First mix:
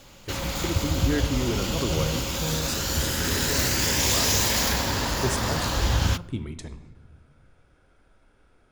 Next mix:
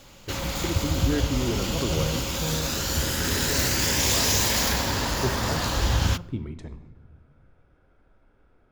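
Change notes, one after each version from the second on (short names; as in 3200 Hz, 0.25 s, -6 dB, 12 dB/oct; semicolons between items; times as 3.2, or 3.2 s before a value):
speech: add LPF 1400 Hz 6 dB/oct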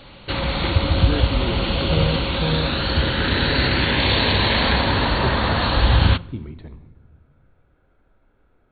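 background +7.5 dB; master: add brick-wall FIR low-pass 4500 Hz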